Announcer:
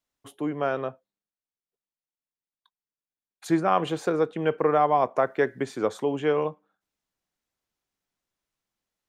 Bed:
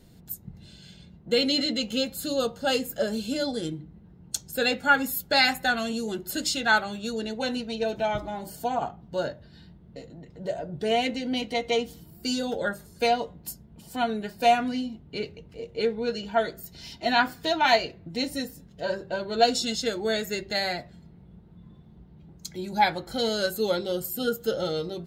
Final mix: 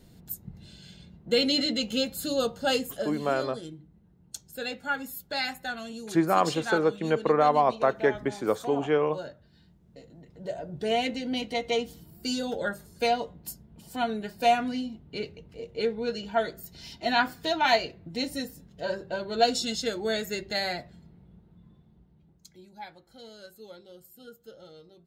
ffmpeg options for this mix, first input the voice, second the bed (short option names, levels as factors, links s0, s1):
-filter_complex "[0:a]adelay=2650,volume=0.944[s0];[1:a]volume=2.24,afade=t=out:st=2.73:d=0.43:silence=0.354813,afade=t=in:st=9.76:d=1.1:silence=0.421697,afade=t=out:st=20.9:d=1.84:silence=0.112202[s1];[s0][s1]amix=inputs=2:normalize=0"